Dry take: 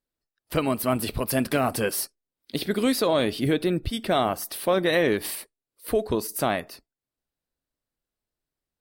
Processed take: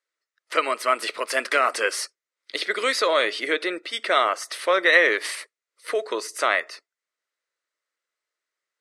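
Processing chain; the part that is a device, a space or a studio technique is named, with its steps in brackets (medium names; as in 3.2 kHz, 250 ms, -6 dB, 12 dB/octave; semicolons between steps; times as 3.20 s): phone speaker on a table (cabinet simulation 480–8500 Hz, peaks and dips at 770 Hz -10 dB, 1.3 kHz +7 dB, 2 kHz +10 dB, 6.4 kHz +3 dB); peaking EQ 330 Hz +3.5 dB 0.23 oct; trim +4 dB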